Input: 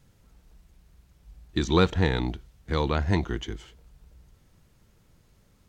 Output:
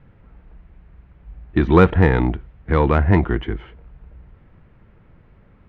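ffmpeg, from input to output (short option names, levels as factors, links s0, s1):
-filter_complex "[0:a]lowpass=f=2300:w=0.5412,lowpass=f=2300:w=1.3066,asplit=2[s0][s1];[s1]asoftclip=type=tanh:threshold=0.0708,volume=0.398[s2];[s0][s2]amix=inputs=2:normalize=0,volume=2.37"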